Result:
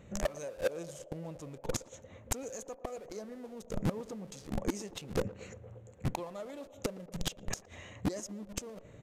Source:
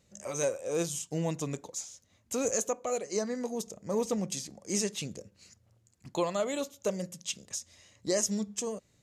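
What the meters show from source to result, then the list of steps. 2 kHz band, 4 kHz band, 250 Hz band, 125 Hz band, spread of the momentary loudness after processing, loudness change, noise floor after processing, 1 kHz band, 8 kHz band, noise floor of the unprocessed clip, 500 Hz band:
-2.5 dB, -5.5 dB, -4.5 dB, 0.0 dB, 10 LU, -6.5 dB, -56 dBFS, -5.0 dB, -9.5 dB, -69 dBFS, -6.5 dB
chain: local Wiener filter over 9 samples; treble shelf 3 kHz -2.5 dB; in parallel at -9.5 dB: Schmitt trigger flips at -43.5 dBFS; on the sum: inverted gate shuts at -28 dBFS, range -28 dB; saturation -39 dBFS, distortion -9 dB; band-passed feedback delay 116 ms, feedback 85%, band-pass 570 Hz, level -16.5 dB; resampled via 32 kHz; trim +15 dB

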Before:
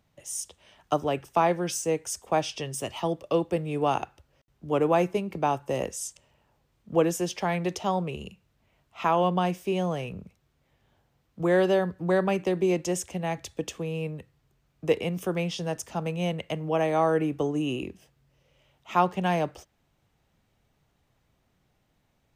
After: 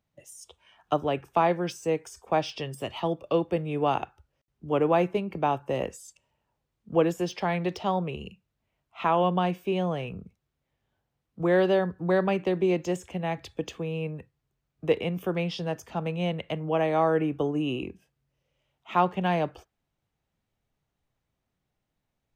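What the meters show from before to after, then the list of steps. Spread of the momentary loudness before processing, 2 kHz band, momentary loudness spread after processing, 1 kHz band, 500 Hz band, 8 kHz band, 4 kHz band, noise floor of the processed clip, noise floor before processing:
11 LU, 0.0 dB, 12 LU, 0.0 dB, 0.0 dB, under -10 dB, -1.0 dB, -82 dBFS, -71 dBFS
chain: spectral noise reduction 11 dB; de-esser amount 90%

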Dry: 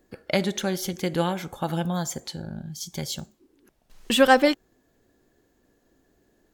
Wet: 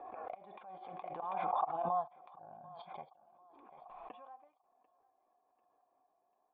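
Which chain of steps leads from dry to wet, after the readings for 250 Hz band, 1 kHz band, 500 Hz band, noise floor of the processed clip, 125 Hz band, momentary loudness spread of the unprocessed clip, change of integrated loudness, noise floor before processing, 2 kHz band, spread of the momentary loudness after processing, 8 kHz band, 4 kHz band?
-30.0 dB, -9.0 dB, -19.0 dB, -78 dBFS, -27.5 dB, 17 LU, -14.5 dB, -68 dBFS, -29.5 dB, 21 LU, under -40 dB, -35.5 dB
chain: tilt EQ +4 dB/octave; inverted gate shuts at -14 dBFS, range -31 dB; flange 0.59 Hz, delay 2.2 ms, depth 5.4 ms, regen -46%; cascade formant filter a; on a send: thinning echo 743 ms, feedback 47%, high-pass 300 Hz, level -23 dB; on the sum: swell ahead of each attack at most 23 dB/s; trim +9 dB

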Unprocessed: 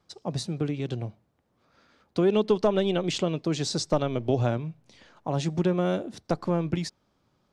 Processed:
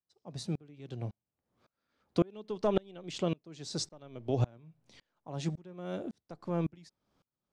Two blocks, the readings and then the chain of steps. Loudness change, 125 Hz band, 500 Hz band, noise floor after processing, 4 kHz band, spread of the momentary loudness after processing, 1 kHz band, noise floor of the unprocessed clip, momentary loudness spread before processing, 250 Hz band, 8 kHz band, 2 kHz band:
-9.0 dB, -7.5 dB, -10.0 dB, under -85 dBFS, -9.5 dB, 12 LU, -10.0 dB, -71 dBFS, 11 LU, -9.0 dB, -8.0 dB, -12.5 dB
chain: sawtooth tremolo in dB swelling 1.8 Hz, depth 33 dB

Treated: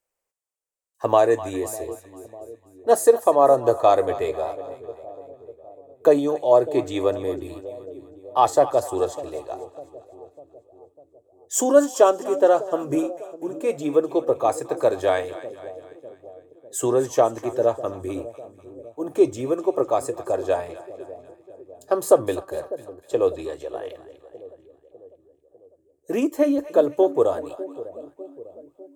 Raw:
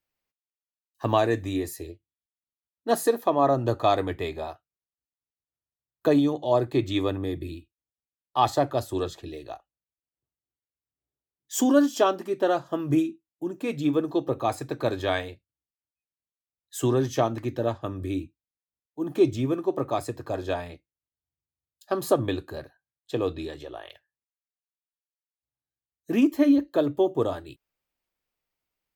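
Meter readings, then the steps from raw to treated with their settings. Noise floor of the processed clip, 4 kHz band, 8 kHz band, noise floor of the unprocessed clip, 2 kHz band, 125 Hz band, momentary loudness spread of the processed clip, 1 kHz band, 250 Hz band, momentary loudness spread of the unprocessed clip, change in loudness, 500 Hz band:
-64 dBFS, -3.0 dB, +7.0 dB, under -85 dBFS, 0.0 dB, -6.5 dB, 20 LU, +5.0 dB, -1.5 dB, 16 LU, +4.0 dB, +7.0 dB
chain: graphic EQ 125/250/500/1000/4000/8000 Hz -6/-5/+11/+3/-6/+11 dB; two-band feedback delay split 640 Hz, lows 600 ms, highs 249 ms, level -15 dB; trim -1 dB

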